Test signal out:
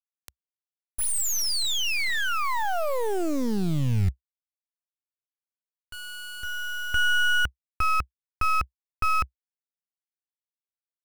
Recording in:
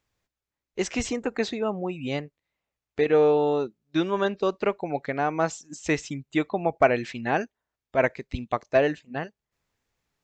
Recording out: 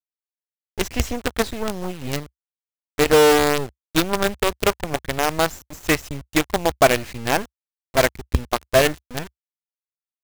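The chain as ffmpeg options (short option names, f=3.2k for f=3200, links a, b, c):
-af "acrusher=bits=4:dc=4:mix=0:aa=0.000001,equalizer=f=65:w=1.3:g=13.5,volume=4dB"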